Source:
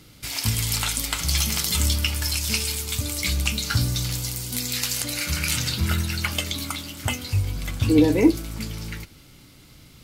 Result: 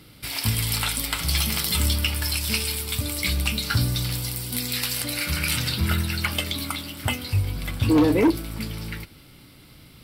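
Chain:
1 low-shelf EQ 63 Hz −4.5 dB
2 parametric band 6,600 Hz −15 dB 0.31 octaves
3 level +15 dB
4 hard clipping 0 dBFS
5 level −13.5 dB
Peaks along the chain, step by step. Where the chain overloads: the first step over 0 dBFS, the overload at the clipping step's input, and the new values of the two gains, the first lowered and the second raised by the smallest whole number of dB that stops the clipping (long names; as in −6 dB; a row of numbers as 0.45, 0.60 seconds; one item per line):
−5.0, −5.0, +10.0, 0.0, −13.5 dBFS
step 3, 10.0 dB
step 3 +5 dB, step 5 −3.5 dB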